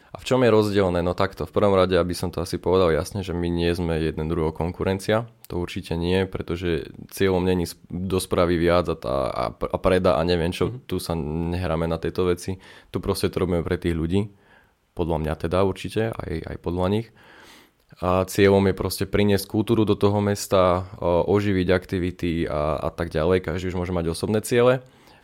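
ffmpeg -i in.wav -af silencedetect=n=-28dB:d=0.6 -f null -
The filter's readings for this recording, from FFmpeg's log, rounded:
silence_start: 14.25
silence_end: 14.99 | silence_duration: 0.74
silence_start: 17.01
silence_end: 18.02 | silence_duration: 1.01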